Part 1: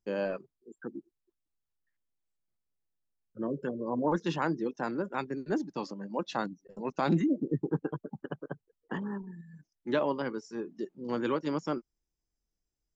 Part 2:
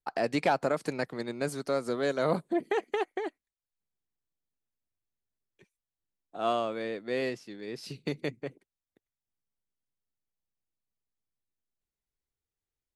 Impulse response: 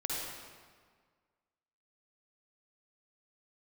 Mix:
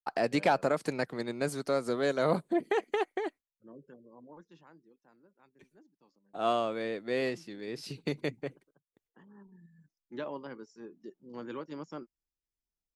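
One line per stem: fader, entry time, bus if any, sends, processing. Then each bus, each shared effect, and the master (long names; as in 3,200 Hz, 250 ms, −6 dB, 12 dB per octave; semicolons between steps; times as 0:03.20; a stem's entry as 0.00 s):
−10.0 dB, 0.25 s, no send, automatic ducking −21 dB, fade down 1.85 s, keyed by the second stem
0.0 dB, 0.00 s, no send, noise gate with hold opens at −59 dBFS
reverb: not used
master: no processing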